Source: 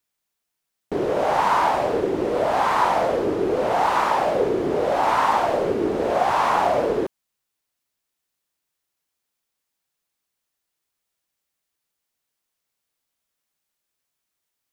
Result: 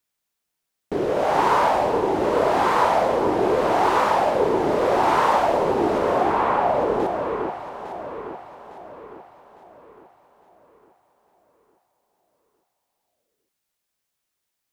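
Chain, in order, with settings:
0:05.98–0:07.00: high-frequency loss of the air 390 metres
on a send: delay that swaps between a low-pass and a high-pass 428 ms, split 860 Hz, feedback 65%, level −4.5 dB

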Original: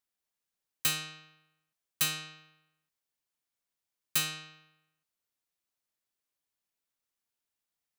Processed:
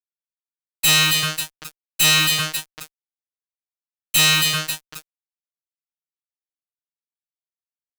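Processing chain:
echo with a time of its own for lows and highs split 2,200 Hz, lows 381 ms, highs 265 ms, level −15 dB
spectral peaks only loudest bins 32
fuzz pedal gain 51 dB, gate −51 dBFS

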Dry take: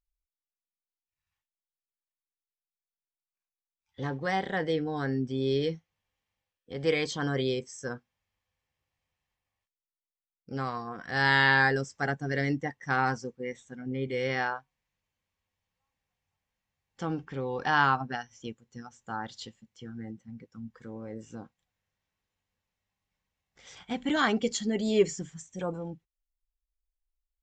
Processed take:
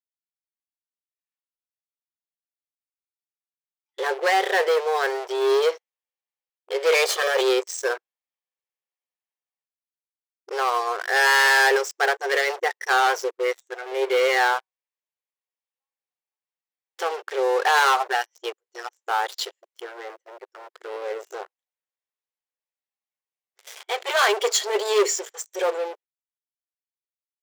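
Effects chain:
0:06.93–0:07.41: lower of the sound and its delayed copy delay 1.7 ms
leveller curve on the samples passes 5
linear-phase brick-wall high-pass 360 Hz
level −3.5 dB

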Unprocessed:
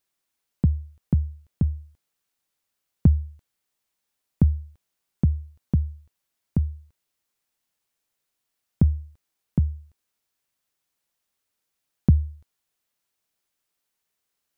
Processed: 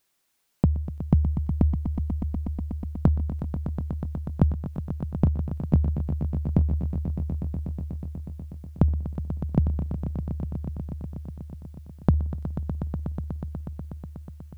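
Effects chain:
downward compressor 6 to 1, threshold −25 dBFS, peak gain reduction 13 dB
on a send: echo that builds up and dies away 122 ms, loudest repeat 5, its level −12 dB
on the sum: level +7.5 dB

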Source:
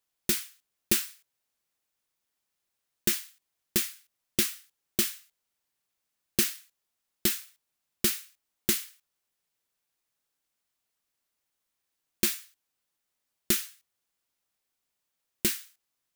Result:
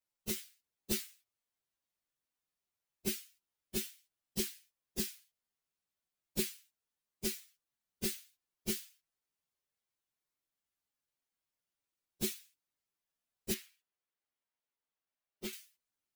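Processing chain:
partials spread apart or drawn together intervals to 119%
0:13.54–0:15.53: bass and treble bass −8 dB, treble −9 dB
level −2 dB

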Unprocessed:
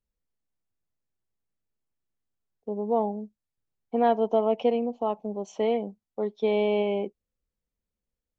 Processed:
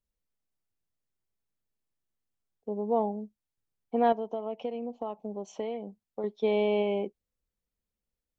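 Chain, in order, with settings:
0:04.12–0:06.24: downward compressor 4 to 1, threshold −30 dBFS, peak gain reduction 11 dB
level −2 dB

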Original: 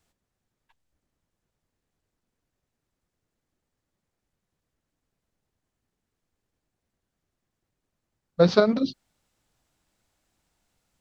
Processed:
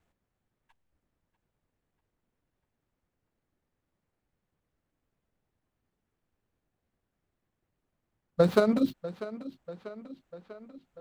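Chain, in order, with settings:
running median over 9 samples
downward compressor, threshold −17 dBFS, peak gain reduction 6 dB
tape delay 643 ms, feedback 65%, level −14 dB, low-pass 5,500 Hz

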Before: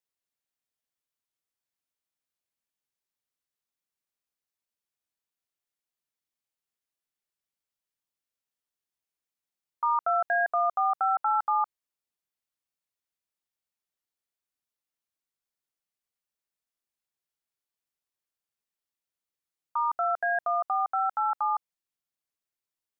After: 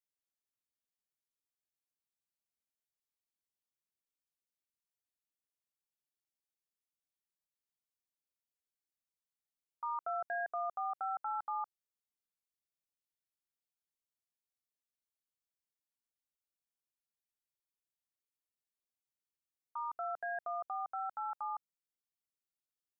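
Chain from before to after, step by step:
parametric band 1,400 Hz −6.5 dB 2.9 octaves
level −6.5 dB

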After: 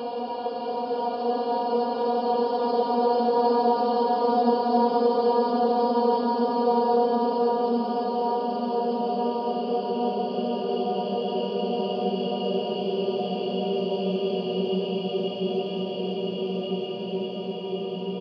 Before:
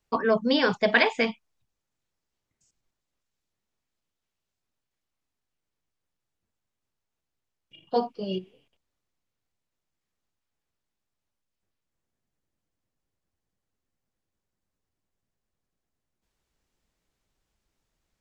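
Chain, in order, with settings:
high-shelf EQ 5,900 Hz −11.5 dB
double-tracking delay 18 ms −11 dB
convolution reverb RT60 2.5 s, pre-delay 8 ms, DRR 4.5 dB
extreme stretch with random phases 28×, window 0.50 s, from 0:07.82
high-pass filter 99 Hz
low-shelf EQ 160 Hz −4 dB
level +5 dB

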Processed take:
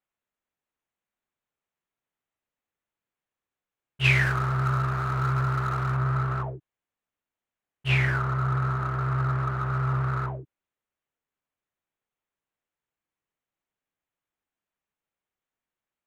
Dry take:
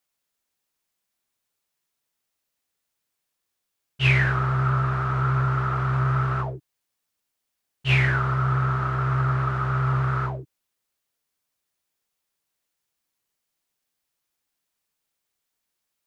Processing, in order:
adaptive Wiener filter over 9 samples
0:04.04–0:05.96: high-shelf EQ 3,000 Hz +8.5 dB
level −3 dB

